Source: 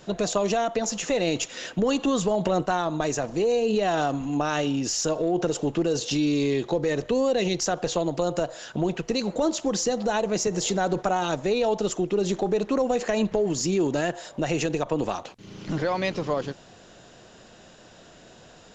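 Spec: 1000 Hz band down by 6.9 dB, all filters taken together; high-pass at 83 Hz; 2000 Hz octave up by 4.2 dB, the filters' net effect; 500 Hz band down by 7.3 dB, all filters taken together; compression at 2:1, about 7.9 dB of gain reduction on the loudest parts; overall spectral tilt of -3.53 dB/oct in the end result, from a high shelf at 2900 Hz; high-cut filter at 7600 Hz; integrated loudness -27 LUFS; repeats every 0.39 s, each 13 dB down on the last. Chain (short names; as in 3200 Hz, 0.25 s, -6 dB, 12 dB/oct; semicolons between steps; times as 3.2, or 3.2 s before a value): HPF 83 Hz; LPF 7600 Hz; bell 500 Hz -7.5 dB; bell 1000 Hz -8.5 dB; bell 2000 Hz +7.5 dB; high shelf 2900 Hz +3 dB; compressor 2:1, threshold -37 dBFS; feedback echo 0.39 s, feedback 22%, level -13 dB; gain +8 dB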